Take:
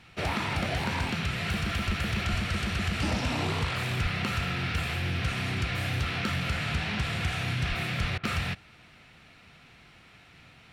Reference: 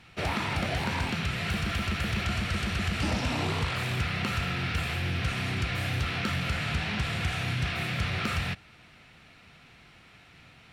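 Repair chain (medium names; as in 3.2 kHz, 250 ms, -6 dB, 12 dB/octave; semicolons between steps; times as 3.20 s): de-plosive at 1.86/2.30/4.02/7.68/8.00 s; interpolate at 8.18 s, 53 ms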